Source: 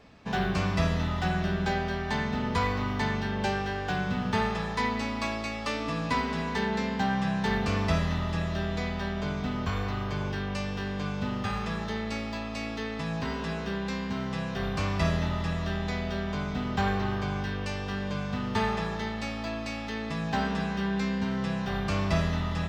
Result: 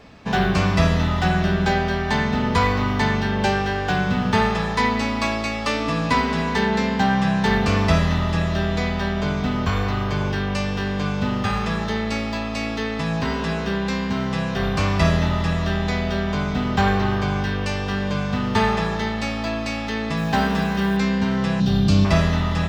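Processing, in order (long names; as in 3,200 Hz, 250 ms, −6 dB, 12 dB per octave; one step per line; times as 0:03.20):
0:20.17–0:20.97: floating-point word with a short mantissa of 4 bits
0:21.60–0:22.05: graphic EQ with 10 bands 125 Hz +7 dB, 250 Hz +6 dB, 500 Hz −4 dB, 1,000 Hz −8 dB, 2,000 Hz −11 dB, 4,000 Hz +7 dB
level +8.5 dB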